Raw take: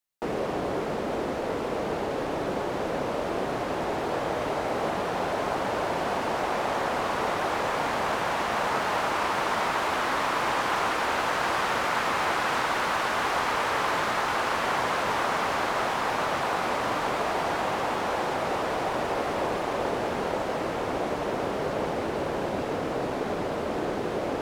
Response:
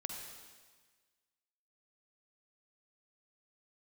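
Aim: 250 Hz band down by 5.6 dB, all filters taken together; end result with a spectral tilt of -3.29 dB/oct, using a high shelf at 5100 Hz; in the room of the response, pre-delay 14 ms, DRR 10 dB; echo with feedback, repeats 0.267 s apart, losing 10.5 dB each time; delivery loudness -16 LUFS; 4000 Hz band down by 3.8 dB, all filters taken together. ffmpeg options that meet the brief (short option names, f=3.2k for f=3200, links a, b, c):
-filter_complex "[0:a]equalizer=f=250:t=o:g=-8,equalizer=f=4k:t=o:g=-8.5,highshelf=f=5.1k:g=7.5,aecho=1:1:267|534|801:0.299|0.0896|0.0269,asplit=2[a][b];[1:a]atrim=start_sample=2205,adelay=14[c];[b][c]afir=irnorm=-1:irlink=0,volume=-9.5dB[d];[a][d]amix=inputs=2:normalize=0,volume=12dB"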